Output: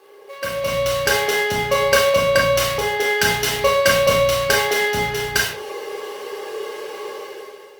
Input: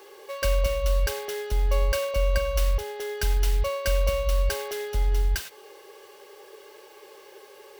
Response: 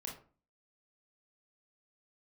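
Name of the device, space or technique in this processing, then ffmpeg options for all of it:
far-field microphone of a smart speaker: -filter_complex "[0:a]highpass=frequency=56:width=0.5412,highpass=frequency=56:width=1.3066,highshelf=frequency=8200:gain=-5.5[link_01];[1:a]atrim=start_sample=2205[link_02];[link_01][link_02]afir=irnorm=-1:irlink=0,highpass=frequency=120:width=0.5412,highpass=frequency=120:width=1.3066,dynaudnorm=framelen=290:gausssize=5:maxgain=16dB,volume=3dB" -ar 48000 -c:a libopus -b:a 32k

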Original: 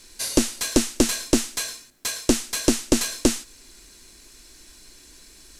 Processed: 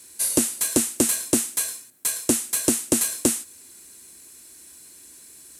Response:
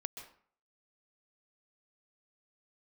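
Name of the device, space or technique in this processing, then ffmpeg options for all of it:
budget condenser microphone: -af "highpass=frequency=76:width=0.5412,highpass=frequency=76:width=1.3066,highshelf=frequency=7100:width_type=q:width=1.5:gain=9.5,volume=-3dB"

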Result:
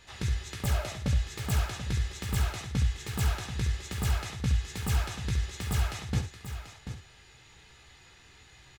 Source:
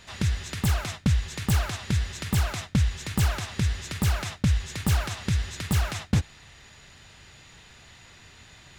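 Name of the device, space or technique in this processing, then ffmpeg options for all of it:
slapback doubling: -filter_complex "[0:a]asettb=1/sr,asplit=3[link_01][link_02][link_03];[link_01]atrim=end=0.624[link_04];[link_02]atrim=start=0.62:end=1.26,asetpts=PTS-STARTPTS,afade=type=in:duration=0.004:curve=qsin,afade=type=out:start_time=0.636:duration=0.004:curve=qsin,equalizer=frequency=600:width=5.1:gain=13.5[link_05];[link_03]atrim=start=1.256[link_06];[link_04][link_05]acrossfade=duration=0.004:curve1=hsin:curve2=qsin[link_07];[link_07][link_06]acrossfade=duration=0.004:curve1=qsin:curve2=hsin,aecho=1:1:2.4:0.36,asplit=3[link_08][link_09][link_10];[link_09]adelay=16,volume=-6.5dB[link_11];[link_10]adelay=69,volume=-8.5dB[link_12];[link_08][link_11][link_12]amix=inputs=3:normalize=0,aecho=1:1:737:0.299,volume=-7dB"

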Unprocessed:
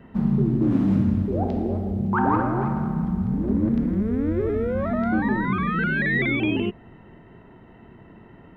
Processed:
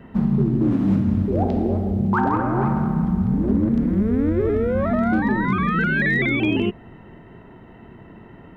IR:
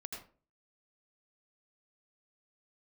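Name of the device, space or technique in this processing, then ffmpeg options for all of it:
limiter into clipper: -af "alimiter=limit=-14dB:level=0:latency=1:release=265,asoftclip=type=hard:threshold=-15dB,volume=4dB"

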